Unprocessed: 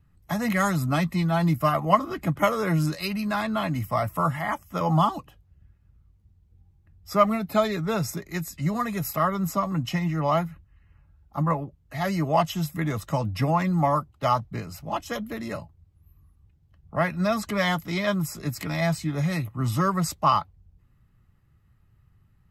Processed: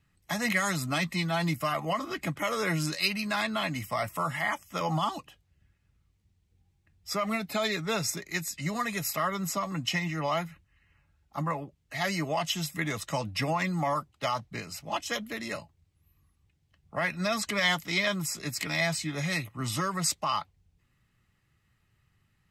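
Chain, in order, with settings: bass shelf 140 Hz -11 dB; peak limiter -17.5 dBFS, peak gain reduction 11 dB; high-order bell 4.2 kHz +8 dB 2.7 oct; trim -3 dB

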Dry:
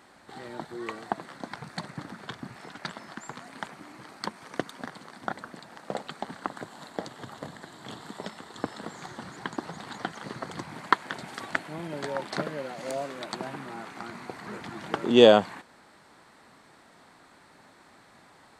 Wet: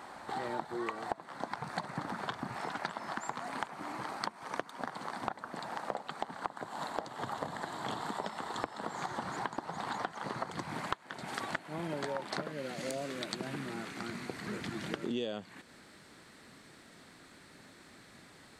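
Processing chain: peaking EQ 890 Hz +8.5 dB 1.3 oct, from 10.50 s +2 dB, from 12.52 s -10 dB; compression 12:1, threshold -36 dBFS, peak gain reduction 23.5 dB; trim +3 dB

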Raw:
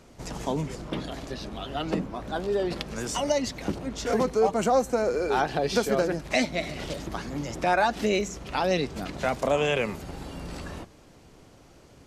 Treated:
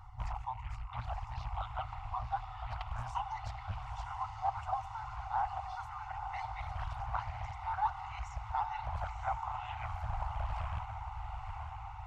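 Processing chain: rattle on loud lows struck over -39 dBFS, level -29 dBFS; reverb removal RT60 1.6 s; reverse; compression 6:1, threshold -34 dBFS, peak gain reduction 14.5 dB; reverse; FFT band-reject 120–740 Hz; Savitzky-Golay filter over 65 samples; echo that smears into a reverb 949 ms, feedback 68%, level -6 dB; reverberation RT60 1.8 s, pre-delay 4 ms, DRR 14 dB; loudspeaker Doppler distortion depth 0.69 ms; trim +7.5 dB

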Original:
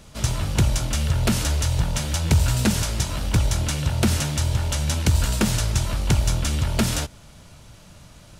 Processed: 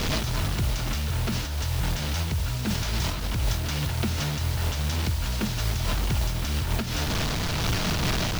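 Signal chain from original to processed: one-bit delta coder 64 kbps, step -23 dBFS; low-pass 5.8 kHz 24 dB/octave; band-stop 560 Hz, Q 12; in parallel at 0 dB: compressor with a negative ratio -28 dBFS; on the sum: peak limiter -14 dBFS, peak gain reduction 6 dB; word length cut 6-bit, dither triangular; random flutter of the level, depth 60%; trim -2 dB

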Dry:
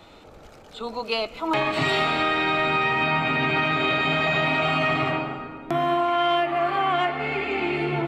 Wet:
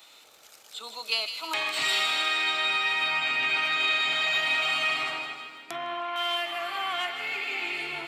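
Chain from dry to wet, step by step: differentiator; feedback echo behind a high-pass 157 ms, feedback 57%, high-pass 2.1 kHz, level -8 dB; 5.63–6.16 s: low-pass that closes with the level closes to 2.6 kHz, closed at -39 dBFS; trim +8 dB

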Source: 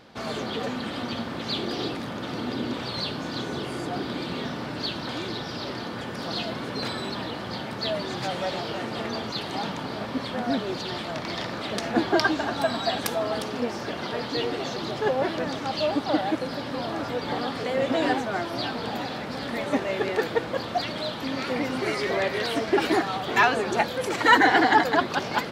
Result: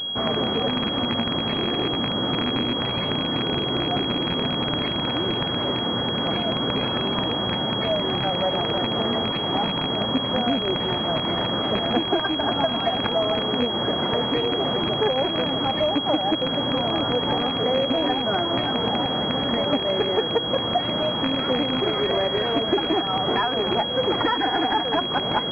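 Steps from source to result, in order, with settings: rattle on loud lows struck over -33 dBFS, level -14 dBFS; compression 12:1, threshold -26 dBFS, peak gain reduction 15.5 dB; class-D stage that switches slowly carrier 3.3 kHz; trim +8.5 dB

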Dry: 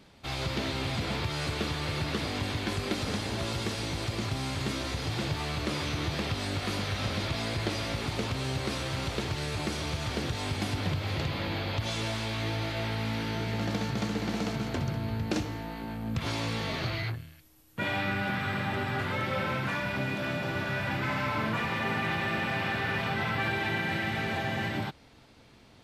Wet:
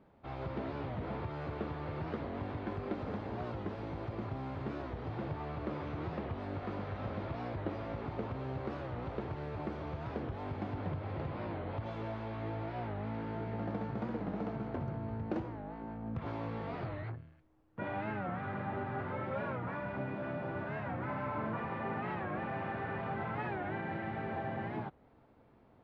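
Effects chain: low-pass 1 kHz 12 dB/octave; bass shelf 310 Hz -6.5 dB; warped record 45 rpm, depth 160 cents; trim -2 dB

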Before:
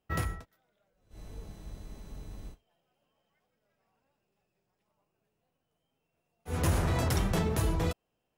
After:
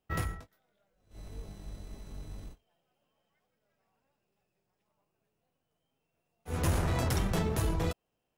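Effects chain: partial rectifier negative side -3 dB; 0.40–2.45 s: doubling 20 ms -7 dB

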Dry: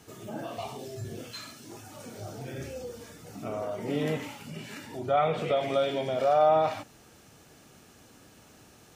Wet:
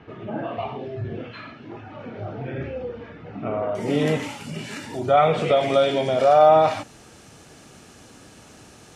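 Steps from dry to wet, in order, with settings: low-pass 2.7 kHz 24 dB/octave, from 3.75 s 11 kHz; trim +8 dB

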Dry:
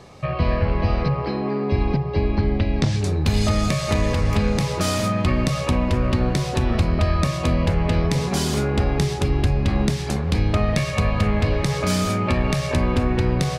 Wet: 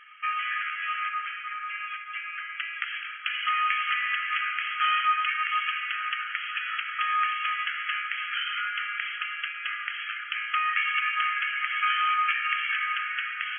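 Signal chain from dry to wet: FFT band-pass 1.2–3.3 kHz; plate-style reverb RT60 2.9 s, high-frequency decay 0.9×, DRR 6.5 dB; trim +4.5 dB

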